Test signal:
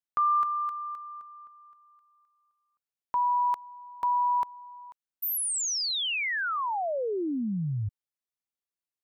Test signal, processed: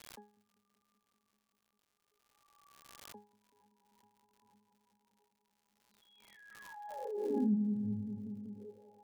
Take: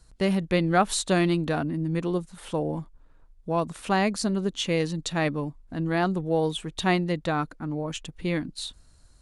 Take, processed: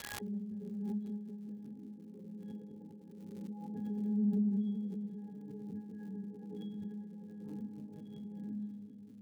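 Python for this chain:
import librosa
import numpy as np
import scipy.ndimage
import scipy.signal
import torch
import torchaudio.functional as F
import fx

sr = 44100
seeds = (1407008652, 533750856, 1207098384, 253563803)

y = fx.spec_quant(x, sr, step_db=15)
y = fx.notch_comb(y, sr, f0_hz=230.0)
y = fx.rev_gated(y, sr, seeds[0], gate_ms=140, shape='flat', drr_db=-1.0)
y = fx.over_compress(y, sr, threshold_db=-31.0, ratio=-1.0)
y = fx.echo_tape(y, sr, ms=194, feedback_pct=89, wet_db=-4.5, lp_hz=2100.0, drive_db=11.0, wow_cents=30)
y = fx.auto_wah(y, sr, base_hz=230.0, top_hz=3400.0, q=4.2, full_db=-33.5, direction='down')
y = fx.peak_eq(y, sr, hz=1100.0, db=-9.5, octaves=0.44)
y = fx.octave_resonator(y, sr, note='G#', decay_s=0.35)
y = fx.dmg_crackle(y, sr, seeds[1], per_s=170.0, level_db=-72.0)
y = fx.pre_swell(y, sr, db_per_s=28.0)
y = y * librosa.db_to_amplitude(8.5)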